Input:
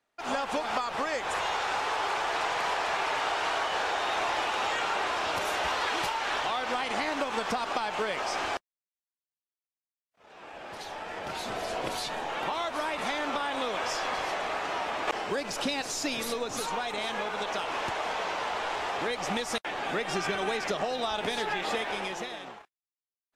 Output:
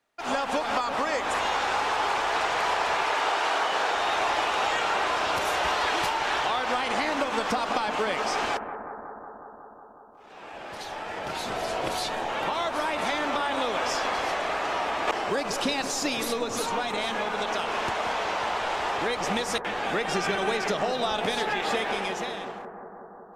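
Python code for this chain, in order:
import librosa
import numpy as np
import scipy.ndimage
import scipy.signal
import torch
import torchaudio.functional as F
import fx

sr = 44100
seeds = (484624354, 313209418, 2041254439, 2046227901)

p1 = fx.highpass(x, sr, hz=fx.line((3.04, 270.0), (3.92, 120.0)), slope=24, at=(3.04, 3.92), fade=0.02)
p2 = p1 + fx.echo_bbd(p1, sr, ms=183, stages=2048, feedback_pct=79, wet_db=-10.5, dry=0)
y = F.gain(torch.from_numpy(p2), 3.0).numpy()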